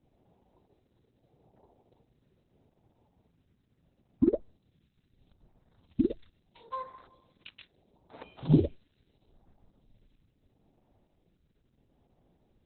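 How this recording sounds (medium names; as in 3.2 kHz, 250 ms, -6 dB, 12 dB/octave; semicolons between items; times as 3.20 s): a buzz of ramps at a fixed pitch in blocks of 8 samples; phasing stages 2, 0.76 Hz, lowest notch 770–2800 Hz; a quantiser's noise floor 12-bit, dither none; Opus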